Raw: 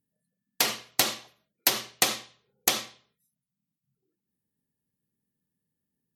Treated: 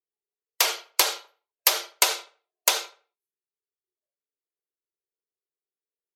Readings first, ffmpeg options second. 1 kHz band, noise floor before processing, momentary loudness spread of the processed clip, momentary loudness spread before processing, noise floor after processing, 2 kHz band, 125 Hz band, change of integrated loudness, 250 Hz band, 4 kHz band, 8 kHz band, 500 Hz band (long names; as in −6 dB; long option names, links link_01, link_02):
+4.0 dB, below −85 dBFS, 10 LU, 10 LU, below −85 dBFS, +2.5 dB, below −40 dB, +3.0 dB, −9.5 dB, +3.0 dB, +3.0 dB, +2.0 dB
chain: -filter_complex "[0:a]afreqshift=230,afftdn=noise_reduction=23:noise_floor=-47,asplit=2[link_01][link_02];[link_02]adelay=81,lowpass=frequency=2700:poles=1,volume=-18dB,asplit=2[link_03][link_04];[link_04]adelay=81,lowpass=frequency=2700:poles=1,volume=0.36,asplit=2[link_05][link_06];[link_06]adelay=81,lowpass=frequency=2700:poles=1,volume=0.36[link_07];[link_01][link_03][link_05][link_07]amix=inputs=4:normalize=0,volume=3dB"